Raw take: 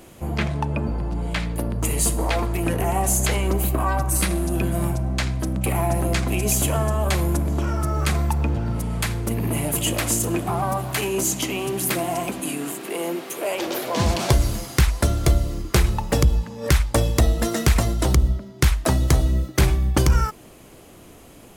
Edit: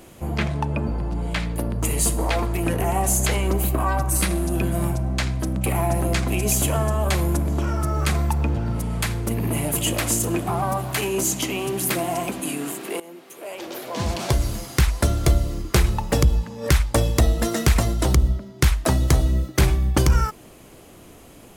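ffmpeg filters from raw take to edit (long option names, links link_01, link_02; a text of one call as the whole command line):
ffmpeg -i in.wav -filter_complex "[0:a]asplit=2[link_01][link_02];[link_01]atrim=end=13,asetpts=PTS-STARTPTS,afade=type=out:start_time=12.996:duration=0.004:curve=hsin:silence=0.141254[link_03];[link_02]atrim=start=13,asetpts=PTS-STARTPTS,afade=type=in:duration=2.04:silence=0.141254[link_04];[link_03][link_04]concat=n=2:v=0:a=1" out.wav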